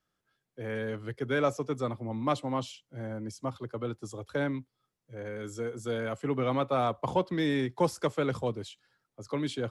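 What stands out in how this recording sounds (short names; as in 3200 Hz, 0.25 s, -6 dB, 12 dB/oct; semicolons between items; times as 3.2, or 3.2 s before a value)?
noise floor -84 dBFS; spectral tilt -5.5 dB/oct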